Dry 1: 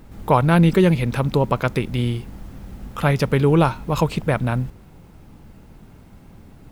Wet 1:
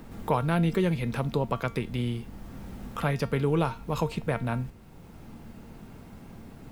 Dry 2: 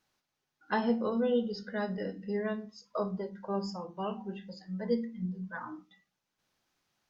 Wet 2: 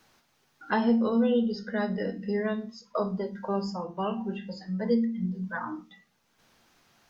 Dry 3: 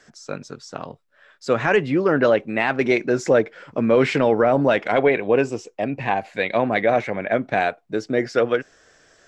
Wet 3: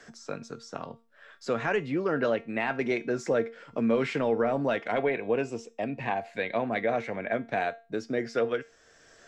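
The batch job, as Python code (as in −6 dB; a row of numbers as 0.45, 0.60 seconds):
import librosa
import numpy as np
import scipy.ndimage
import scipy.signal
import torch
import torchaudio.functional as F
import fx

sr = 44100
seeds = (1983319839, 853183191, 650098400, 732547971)

y = fx.comb_fb(x, sr, f0_hz=230.0, decay_s=0.3, harmonics='all', damping=0.0, mix_pct=60)
y = fx.band_squash(y, sr, depth_pct=40)
y = y * 10.0 ** (-30 / 20.0) / np.sqrt(np.mean(np.square(y)))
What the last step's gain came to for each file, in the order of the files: −2.0, +11.0, −2.5 decibels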